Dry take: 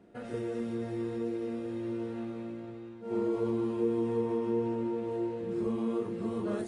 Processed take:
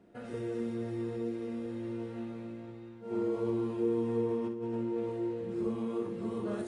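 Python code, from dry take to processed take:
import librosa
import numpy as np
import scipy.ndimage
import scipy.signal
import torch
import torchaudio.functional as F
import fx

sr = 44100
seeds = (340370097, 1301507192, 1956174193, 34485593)

p1 = fx.over_compress(x, sr, threshold_db=-33.0, ratio=-0.5, at=(4.44, 5.12))
p2 = p1 + fx.echo_feedback(p1, sr, ms=60, feedback_pct=35, wet_db=-9.0, dry=0)
y = p2 * librosa.db_to_amplitude(-2.5)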